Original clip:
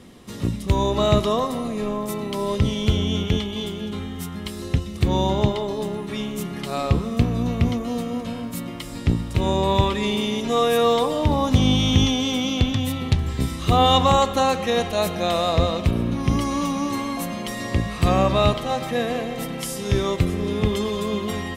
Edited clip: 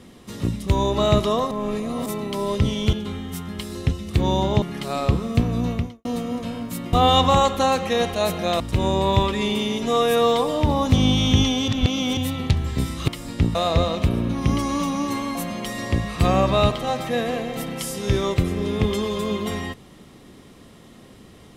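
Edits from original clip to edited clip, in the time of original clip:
1.51–2.06 reverse
2.93–3.8 cut
5.49–6.44 cut
7.54–7.87 fade out quadratic
8.75–9.22 swap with 13.7–15.37
12.3–12.79 reverse

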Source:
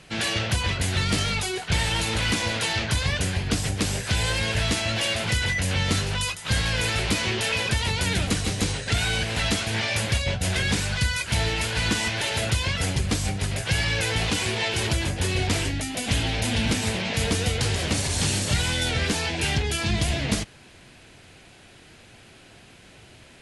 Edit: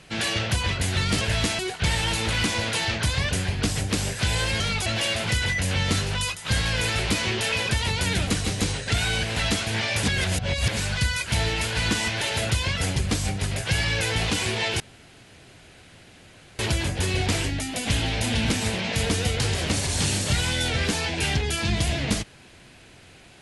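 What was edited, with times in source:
1.21–1.47 swap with 4.48–4.86
10.03–10.77 reverse
14.8 insert room tone 1.79 s

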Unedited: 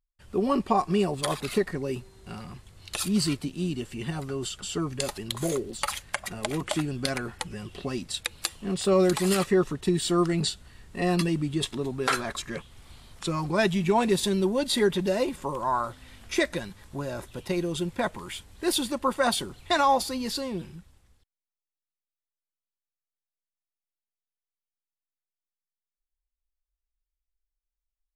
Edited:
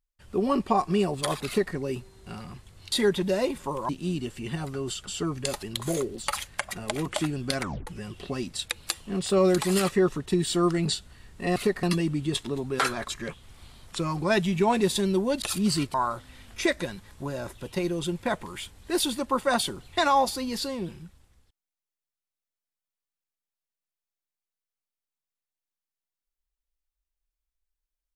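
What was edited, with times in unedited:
1.47–1.74 copy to 11.11
2.92–3.44 swap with 14.7–15.67
7.16 tape stop 0.26 s

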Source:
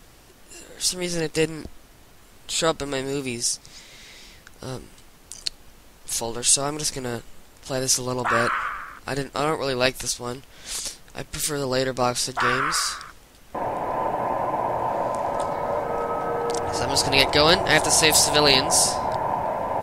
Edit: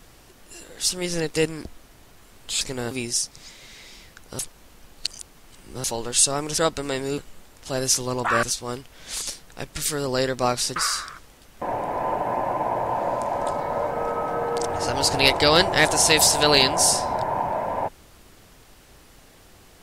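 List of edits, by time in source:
2.61–3.21 swap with 6.88–7.18
4.69–6.14 reverse
8.43–10.01 cut
12.34–12.69 cut

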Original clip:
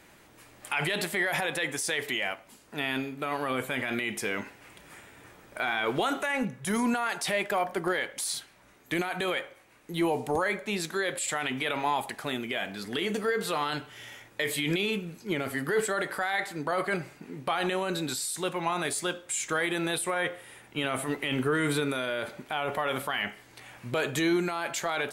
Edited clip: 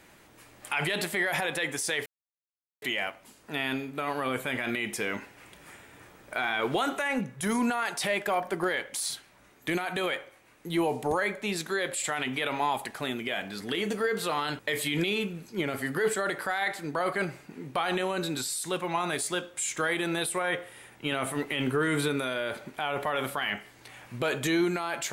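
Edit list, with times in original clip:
2.06 insert silence 0.76 s
13.83–14.31 cut

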